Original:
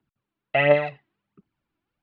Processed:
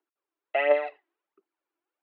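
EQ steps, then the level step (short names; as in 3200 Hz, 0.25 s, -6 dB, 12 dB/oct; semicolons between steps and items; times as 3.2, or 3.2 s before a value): elliptic high-pass 340 Hz, stop band 70 dB; high shelf 3400 Hz -10 dB; -3.0 dB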